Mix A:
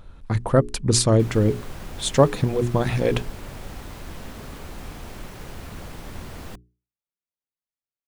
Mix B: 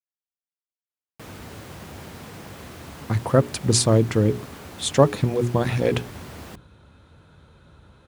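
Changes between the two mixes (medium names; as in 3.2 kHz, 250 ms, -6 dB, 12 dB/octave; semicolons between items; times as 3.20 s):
speech: entry +2.80 s; master: add high-pass 71 Hz 24 dB/octave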